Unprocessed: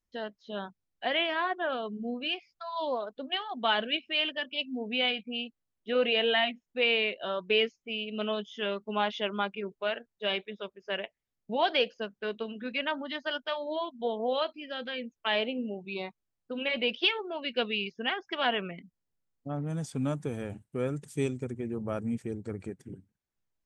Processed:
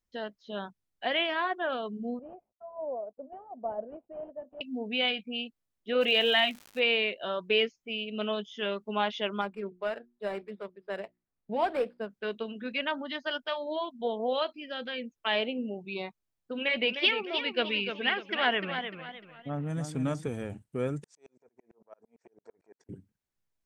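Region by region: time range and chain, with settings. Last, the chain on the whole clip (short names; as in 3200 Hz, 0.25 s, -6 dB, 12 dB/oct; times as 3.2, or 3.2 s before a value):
2.19–4.61 CVSD 32 kbps + ladder low-pass 730 Hz, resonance 60%
6–6.78 bell 3800 Hz +4 dB 1.8 oct + crackle 230/s -37 dBFS
9.41–12.09 median filter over 15 samples + running mean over 7 samples + notches 60/120/180/240/300/360 Hz
16.52–20.28 bell 1900 Hz +5.5 dB 0.58 oct + warbling echo 0.302 s, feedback 34%, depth 108 cents, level -8 dB
21.04–22.89 compressor 20:1, threshold -41 dBFS + speaker cabinet 450–7000 Hz, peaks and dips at 460 Hz +7 dB, 670 Hz +8 dB, 960 Hz +9 dB, 1600 Hz +3 dB, 3100 Hz -8 dB, 5600 Hz +6 dB + dB-ramp tremolo swelling 8.9 Hz, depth 39 dB
whole clip: dry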